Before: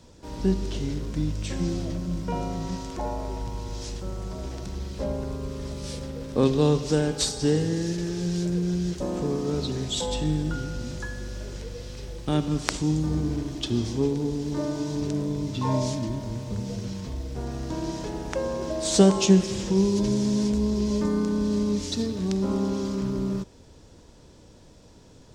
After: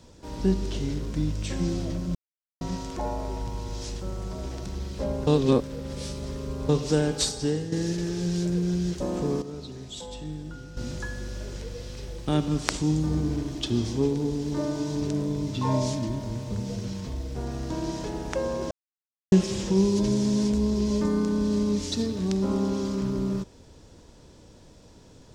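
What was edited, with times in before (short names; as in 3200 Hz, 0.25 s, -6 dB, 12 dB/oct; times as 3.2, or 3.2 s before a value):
2.15–2.61 mute
5.27–6.69 reverse
7.22–7.72 fade out, to -9.5 dB
9.42–10.77 gain -10.5 dB
18.71–19.32 mute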